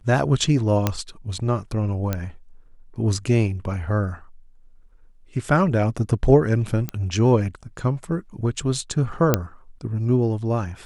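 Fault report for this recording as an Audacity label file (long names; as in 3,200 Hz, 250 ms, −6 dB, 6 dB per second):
0.870000	0.870000	click −5 dBFS
2.130000	2.130000	click −10 dBFS
6.890000	6.890000	click −12 dBFS
9.340000	9.340000	click −2 dBFS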